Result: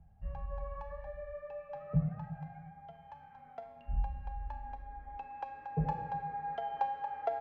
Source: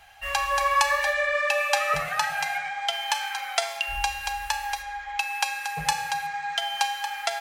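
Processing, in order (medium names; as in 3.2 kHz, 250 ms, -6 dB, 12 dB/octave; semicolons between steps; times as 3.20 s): low-pass sweep 180 Hz -> 400 Hz, 3.12–6.57 s; trim +4.5 dB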